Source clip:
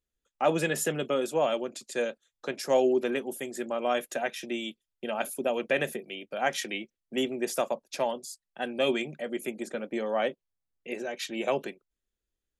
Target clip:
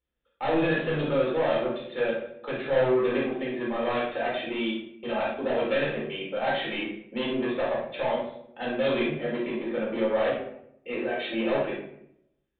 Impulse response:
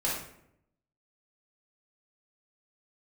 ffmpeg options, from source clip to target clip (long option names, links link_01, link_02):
-filter_complex "[0:a]highpass=40,aresample=8000,asoftclip=type=tanh:threshold=-28.5dB,aresample=44100[link_01];[1:a]atrim=start_sample=2205[link_02];[link_01][link_02]afir=irnorm=-1:irlink=0,volume=-1dB"